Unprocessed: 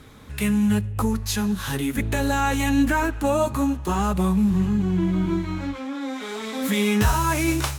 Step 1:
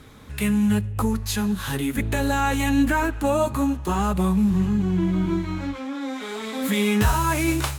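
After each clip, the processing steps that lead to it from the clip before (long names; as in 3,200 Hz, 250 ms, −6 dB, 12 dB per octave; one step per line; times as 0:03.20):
dynamic equaliser 5,700 Hz, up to −4 dB, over −51 dBFS, Q 3.9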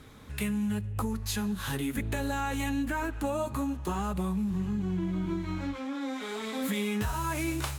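downward compressor, threshold −23 dBFS, peak gain reduction 8.5 dB
level −4.5 dB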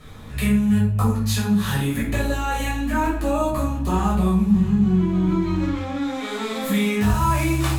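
rectangular room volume 540 cubic metres, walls furnished, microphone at 6 metres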